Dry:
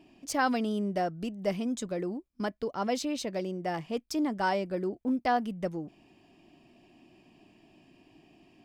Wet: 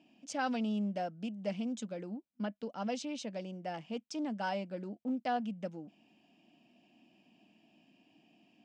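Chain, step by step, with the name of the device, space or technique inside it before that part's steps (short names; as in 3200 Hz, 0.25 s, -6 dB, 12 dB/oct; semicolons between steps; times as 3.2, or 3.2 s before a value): 2.11–2.56 LPF 3400 Hz 12 dB/oct; full-range speaker at full volume (Doppler distortion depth 0.14 ms; speaker cabinet 200–7400 Hz, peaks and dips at 210 Hz +7 dB, 380 Hz -10 dB, 1100 Hz -7 dB, 1900 Hz -5 dB, 2900 Hz +4 dB, 4400 Hz -4 dB); gain -5.5 dB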